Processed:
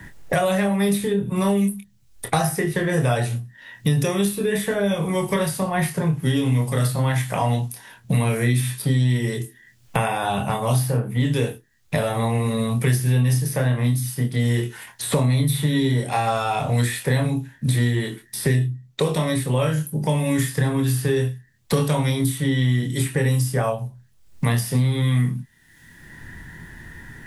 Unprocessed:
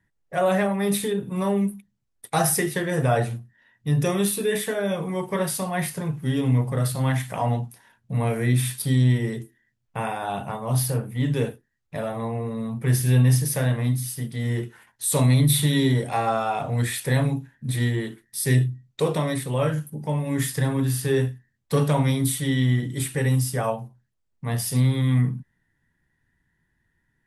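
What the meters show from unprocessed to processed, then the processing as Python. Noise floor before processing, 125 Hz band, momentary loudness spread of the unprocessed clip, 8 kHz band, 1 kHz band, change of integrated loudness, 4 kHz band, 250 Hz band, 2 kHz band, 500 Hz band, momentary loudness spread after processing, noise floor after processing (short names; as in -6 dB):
-73 dBFS, +2.0 dB, 10 LU, -1.0 dB, +2.5 dB, +2.0 dB, +2.5 dB, +2.5 dB, +3.5 dB, +2.0 dB, 8 LU, -55 dBFS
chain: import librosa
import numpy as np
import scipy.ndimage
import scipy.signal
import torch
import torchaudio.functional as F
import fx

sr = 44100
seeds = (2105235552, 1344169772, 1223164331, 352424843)

y = fx.doubler(x, sr, ms=25.0, db=-7)
y = fx.band_squash(y, sr, depth_pct=100)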